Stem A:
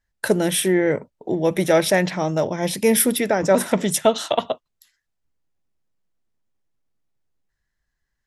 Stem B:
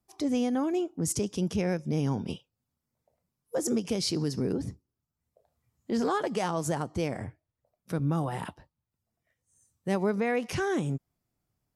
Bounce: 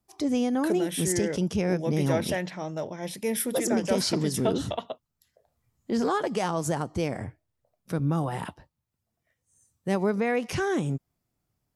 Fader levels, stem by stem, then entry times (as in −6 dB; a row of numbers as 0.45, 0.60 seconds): −11.5, +2.0 decibels; 0.40, 0.00 seconds